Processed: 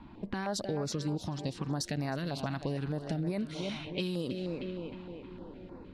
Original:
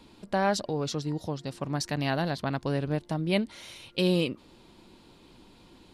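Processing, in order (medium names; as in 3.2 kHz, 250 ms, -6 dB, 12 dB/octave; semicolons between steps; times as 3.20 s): on a send: tape echo 315 ms, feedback 64%, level -14 dB, low-pass 5.6 kHz; on the sum: peak limiter -20.5 dBFS, peak gain reduction 9 dB; level-controlled noise filter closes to 1.3 kHz, open at -27.5 dBFS; compression, threshold -36 dBFS, peak gain reduction 10.5 dB; step-sequenced notch 6.5 Hz 470–3100 Hz; trim +6.5 dB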